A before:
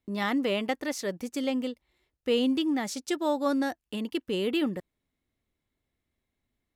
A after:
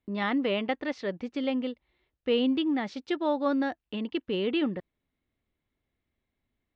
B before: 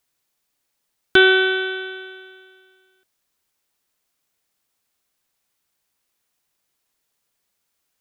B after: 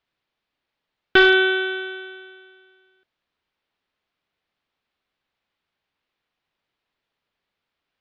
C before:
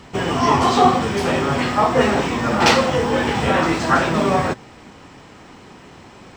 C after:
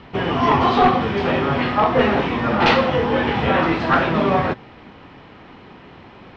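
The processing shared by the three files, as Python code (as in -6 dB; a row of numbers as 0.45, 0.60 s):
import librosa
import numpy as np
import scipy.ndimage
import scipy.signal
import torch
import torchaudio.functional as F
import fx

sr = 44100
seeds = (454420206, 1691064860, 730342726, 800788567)

y = np.minimum(x, 2.0 * 10.0 ** (-8.5 / 20.0) - x)
y = scipy.signal.sosfilt(scipy.signal.butter(4, 3800.0, 'lowpass', fs=sr, output='sos'), y)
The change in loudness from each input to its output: 0.0, -0.5, -0.5 LU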